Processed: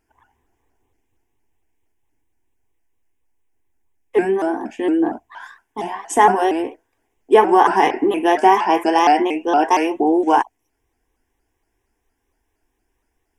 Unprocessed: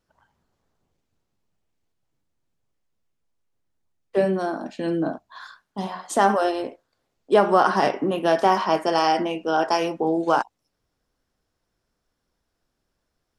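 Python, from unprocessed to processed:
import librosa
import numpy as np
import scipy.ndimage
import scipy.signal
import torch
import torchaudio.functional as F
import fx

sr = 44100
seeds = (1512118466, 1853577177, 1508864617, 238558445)

y = fx.fixed_phaser(x, sr, hz=860.0, stages=8)
y = fx.vibrato_shape(y, sr, shape='saw_up', rate_hz=4.3, depth_cents=160.0)
y = y * 10.0 ** (8.0 / 20.0)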